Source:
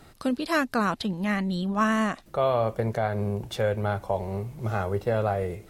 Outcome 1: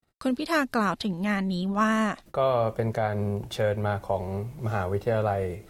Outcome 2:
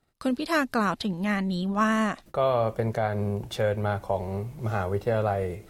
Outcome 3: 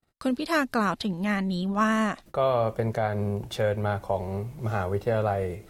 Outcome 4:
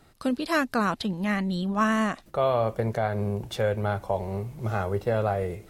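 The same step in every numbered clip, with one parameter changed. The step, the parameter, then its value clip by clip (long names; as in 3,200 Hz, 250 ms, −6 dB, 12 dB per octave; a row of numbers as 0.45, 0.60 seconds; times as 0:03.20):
noise gate, range: −54, −23, −41, −6 decibels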